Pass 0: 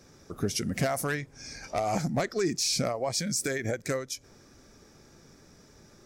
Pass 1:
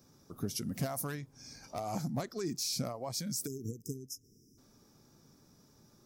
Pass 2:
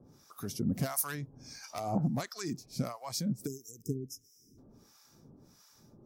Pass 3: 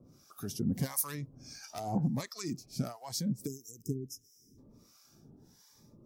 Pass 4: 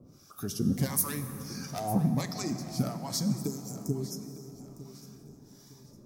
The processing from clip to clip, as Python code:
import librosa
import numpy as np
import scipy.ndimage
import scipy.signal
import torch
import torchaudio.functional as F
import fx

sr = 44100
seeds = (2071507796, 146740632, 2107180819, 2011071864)

y1 = fx.graphic_eq(x, sr, hz=(125, 250, 1000, 2000, 8000), db=(8, 7, 7, -7, -8))
y1 = fx.spec_erase(y1, sr, start_s=3.46, length_s=1.12, low_hz=480.0, high_hz=5000.0)
y1 = librosa.effects.preemphasis(y1, coef=0.8, zi=[0.0])
y2 = fx.harmonic_tremolo(y1, sr, hz=1.5, depth_pct=100, crossover_hz=890.0)
y2 = y2 * 10.0 ** (7.5 / 20.0)
y3 = fx.notch_cascade(y2, sr, direction='rising', hz=0.83)
y4 = fx.echo_feedback(y3, sr, ms=906, feedback_pct=35, wet_db=-16)
y4 = fx.rev_plate(y4, sr, seeds[0], rt60_s=4.3, hf_ratio=0.45, predelay_ms=0, drr_db=7.5)
y4 = y4 * 10.0 ** (4.0 / 20.0)